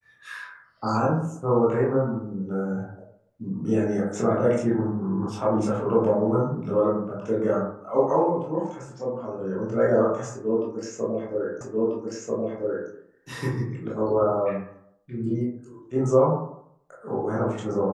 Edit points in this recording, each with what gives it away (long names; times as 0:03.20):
0:11.61: the same again, the last 1.29 s